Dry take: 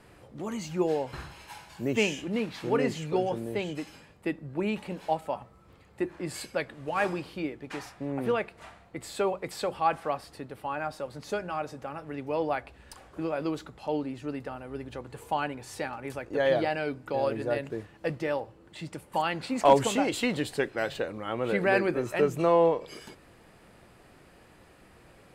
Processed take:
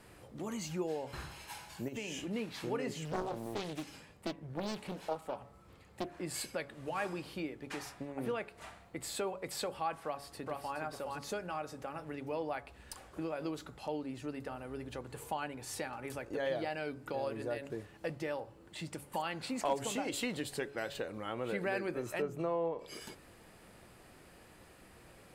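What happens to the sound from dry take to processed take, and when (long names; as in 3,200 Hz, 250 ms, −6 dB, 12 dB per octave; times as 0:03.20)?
0:01.88–0:02.31: downward compressor, threshold −31 dBFS
0:03.05–0:06.15: highs frequency-modulated by the lows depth 0.95 ms
0:10.04–0:10.76: delay throw 420 ms, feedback 15%, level −3.5 dB
0:22.22–0:22.79: high-shelf EQ 2,700 Hz −12 dB
whole clip: downward compressor 2 to 1, threshold −36 dBFS; high-shelf EQ 5,900 Hz +7 dB; hum removal 140.9 Hz, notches 11; level −2.5 dB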